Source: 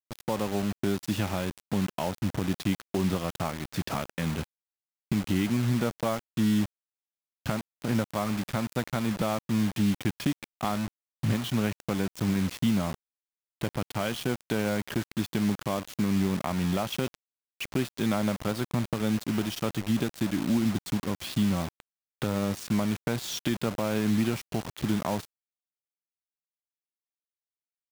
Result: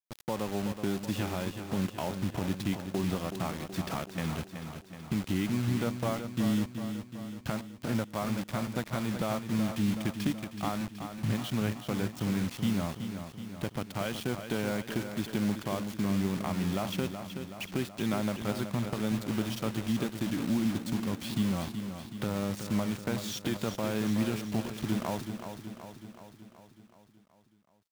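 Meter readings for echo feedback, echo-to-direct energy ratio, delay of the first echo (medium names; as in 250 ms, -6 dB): 59%, -6.5 dB, 375 ms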